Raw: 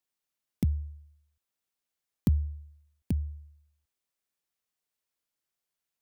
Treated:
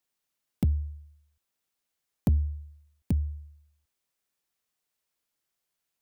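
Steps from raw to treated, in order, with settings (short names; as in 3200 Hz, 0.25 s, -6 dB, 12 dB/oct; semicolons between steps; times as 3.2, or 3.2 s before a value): soft clip -20.5 dBFS, distortion -16 dB; gain +4 dB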